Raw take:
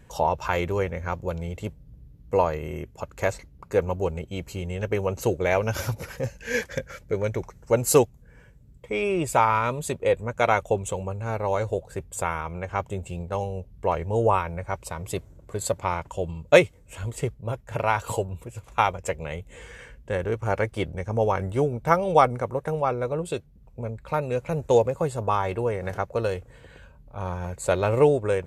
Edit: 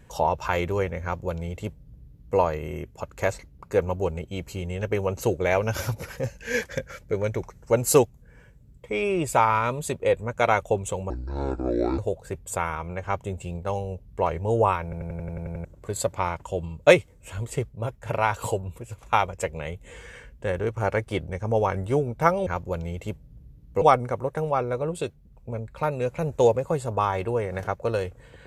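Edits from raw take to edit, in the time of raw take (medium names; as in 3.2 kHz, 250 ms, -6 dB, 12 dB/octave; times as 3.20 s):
1.03–2.38 s: copy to 22.12 s
11.10–11.64 s: speed 61%
14.49 s: stutter in place 0.09 s, 9 plays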